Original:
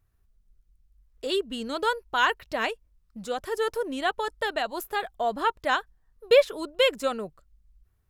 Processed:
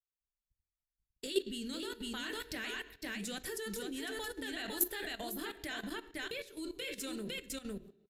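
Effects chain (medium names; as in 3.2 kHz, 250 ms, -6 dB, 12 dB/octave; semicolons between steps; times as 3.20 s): compression 16:1, threshold -27 dBFS, peak gain reduction 15 dB; high-order bell 800 Hz -12.5 dB; delay 504 ms -4.5 dB; gate -52 dBFS, range -34 dB; treble shelf 6 kHz +12 dB; on a send at -6 dB: reverberation RT60 0.65 s, pre-delay 3 ms; on the sum: level held to a coarse grid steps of 14 dB; trim +1.5 dB; AAC 96 kbps 32 kHz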